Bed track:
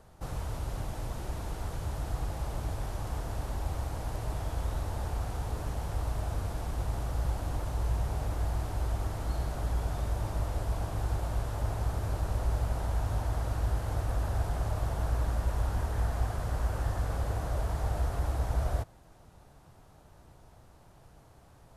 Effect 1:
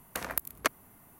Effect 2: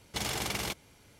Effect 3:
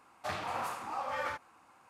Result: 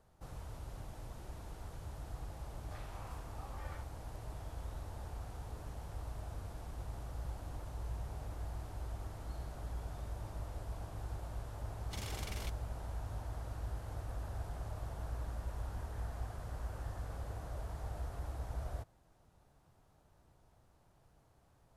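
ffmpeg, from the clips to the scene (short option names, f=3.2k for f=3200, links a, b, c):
-filter_complex "[0:a]volume=-11.5dB[a];[3:a]atrim=end=1.89,asetpts=PTS-STARTPTS,volume=-17.5dB,afade=t=in:d=0.004:c=hsin,afade=t=out:st=1.886:d=0.004:c=hsin,adelay=2460[b];[2:a]atrim=end=1.19,asetpts=PTS-STARTPTS,volume=-13dB,afade=t=in:d=0.004:c=hsin,afade=t=out:st=1.186:d=0.004:c=hsin,adelay=11770[c];[a][b][c]amix=inputs=3:normalize=0"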